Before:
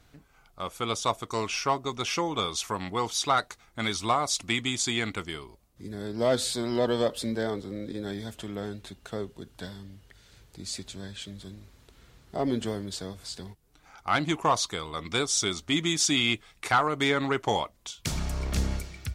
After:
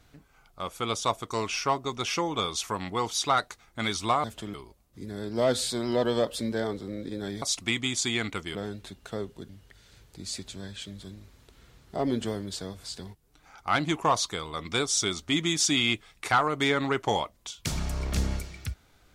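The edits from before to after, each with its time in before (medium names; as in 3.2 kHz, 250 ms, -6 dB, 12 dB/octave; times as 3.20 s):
4.24–5.37 s: swap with 8.25–8.55 s
9.49–9.89 s: delete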